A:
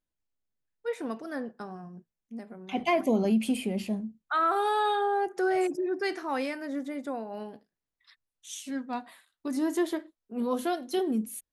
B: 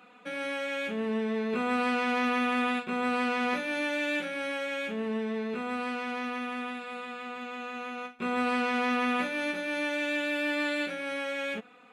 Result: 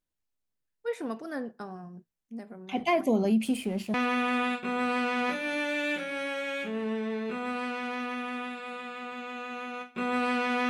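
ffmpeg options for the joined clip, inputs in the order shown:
-filter_complex "[0:a]asettb=1/sr,asplit=3[s0][s1][s2];[s0]atrim=end=3.454[s3];[s1]atrim=start=3.45:end=3.94,asetpts=PTS-STARTPTS,afade=t=in:d=0.004:c=qsin,afade=t=out:st=0.486:d=0.004:c=qsin,aeval=exprs='sgn(val(0))*max(abs(val(0))-0.00316,0)':c=same[s4];[s2]atrim=start=3.936[s5];[s3][s4]acrossfade=d=0.004:c1=hsin:c2=qsin[s6];[s6][s5]acrossfade=d=0.004:c1=qsin:c2=hsin,apad=whole_dur=10.69,atrim=end=10.69,atrim=end=3.942[s7];[1:a]atrim=start=2.178:end=8.93[s8];[s7][s8]acrossfade=d=0.004:c1=hsin:c2=hsin"

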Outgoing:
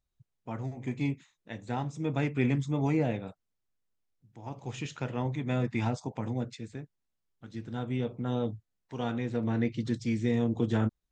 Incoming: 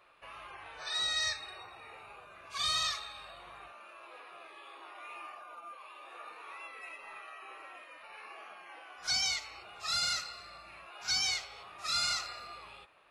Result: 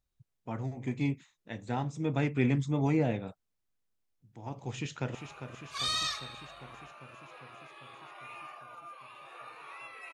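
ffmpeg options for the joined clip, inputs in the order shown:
-filter_complex "[0:a]apad=whole_dur=10.13,atrim=end=10.13,atrim=end=5.152[s0];[1:a]atrim=start=1.948:end=6.93[s1];[s0][s1]acrossfade=d=0.004:c1=hsin:c2=hsin,asplit=2[s2][s3];[s3]afade=t=in:st=4.7:d=0.01,afade=t=out:st=5.15:d=0.01,aecho=0:1:400|800|1200|1600|2000|2400|2800|3200|3600|4000|4400|4800:0.354813|0.26611|0.199583|0.149687|0.112265|0.0841989|0.0631492|0.0473619|0.0355214|0.0266411|0.0199808|0.0149856[s4];[s2][s4]amix=inputs=2:normalize=0"

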